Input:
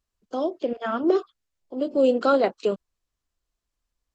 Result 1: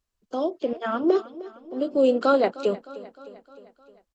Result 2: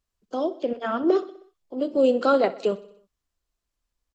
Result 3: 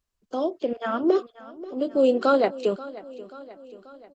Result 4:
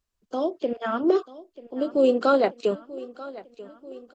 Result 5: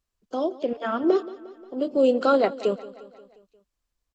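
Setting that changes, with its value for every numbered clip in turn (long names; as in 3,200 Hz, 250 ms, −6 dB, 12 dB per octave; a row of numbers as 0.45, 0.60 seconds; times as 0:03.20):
repeating echo, delay time: 307, 63, 534, 938, 177 milliseconds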